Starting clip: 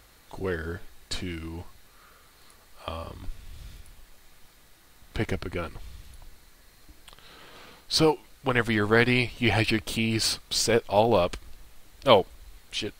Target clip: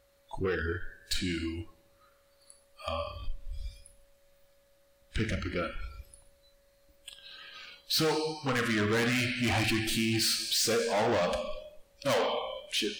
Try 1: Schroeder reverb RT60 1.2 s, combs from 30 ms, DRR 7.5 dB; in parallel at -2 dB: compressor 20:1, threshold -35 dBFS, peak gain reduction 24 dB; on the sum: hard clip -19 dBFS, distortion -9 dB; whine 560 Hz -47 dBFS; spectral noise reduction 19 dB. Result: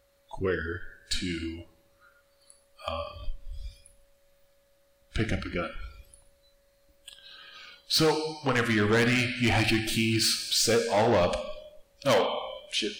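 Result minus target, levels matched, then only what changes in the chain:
hard clip: distortion -4 dB
change: hard clip -25 dBFS, distortion -5 dB

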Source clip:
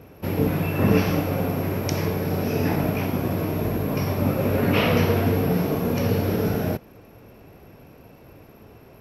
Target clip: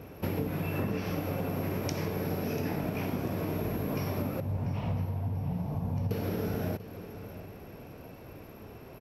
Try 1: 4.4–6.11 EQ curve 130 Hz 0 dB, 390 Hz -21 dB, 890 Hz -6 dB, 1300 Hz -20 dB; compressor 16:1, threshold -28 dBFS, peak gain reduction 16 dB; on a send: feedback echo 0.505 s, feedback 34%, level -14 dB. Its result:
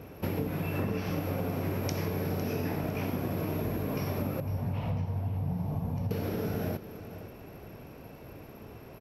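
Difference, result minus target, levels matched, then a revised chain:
echo 0.186 s early
4.4–6.11 EQ curve 130 Hz 0 dB, 390 Hz -21 dB, 890 Hz -6 dB, 1300 Hz -20 dB; compressor 16:1, threshold -28 dBFS, peak gain reduction 16 dB; on a send: feedback echo 0.691 s, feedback 34%, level -14 dB

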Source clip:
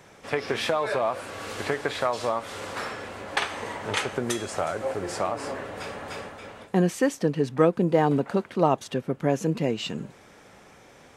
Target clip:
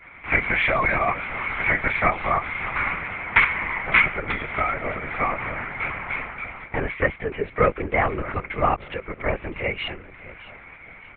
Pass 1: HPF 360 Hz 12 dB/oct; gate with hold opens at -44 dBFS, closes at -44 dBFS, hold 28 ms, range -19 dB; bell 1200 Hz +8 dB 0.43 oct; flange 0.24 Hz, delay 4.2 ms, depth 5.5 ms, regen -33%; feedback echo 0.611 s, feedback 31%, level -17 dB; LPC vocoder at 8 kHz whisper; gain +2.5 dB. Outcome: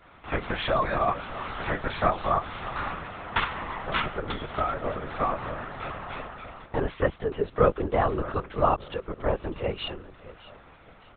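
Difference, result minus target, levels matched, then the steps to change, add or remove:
2000 Hz band -7.5 dB
add after gate with hold: synth low-pass 2200 Hz, resonance Q 12

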